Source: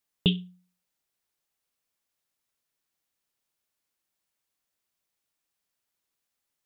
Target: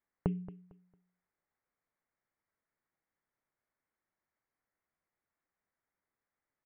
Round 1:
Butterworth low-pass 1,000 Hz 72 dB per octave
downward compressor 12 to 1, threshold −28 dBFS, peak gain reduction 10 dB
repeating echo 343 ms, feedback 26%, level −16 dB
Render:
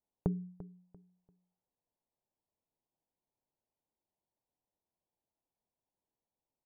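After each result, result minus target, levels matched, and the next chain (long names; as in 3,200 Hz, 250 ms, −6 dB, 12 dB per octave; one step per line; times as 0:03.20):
echo 117 ms late; 2,000 Hz band −8.0 dB
Butterworth low-pass 1,000 Hz 72 dB per octave
downward compressor 12 to 1, threshold −28 dBFS, peak gain reduction 10 dB
repeating echo 226 ms, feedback 26%, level −16 dB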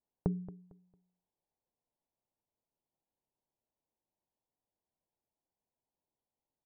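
2,000 Hz band −8.0 dB
Butterworth low-pass 2,200 Hz 72 dB per octave
downward compressor 12 to 1, threshold −28 dBFS, peak gain reduction 10 dB
repeating echo 226 ms, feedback 26%, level −16 dB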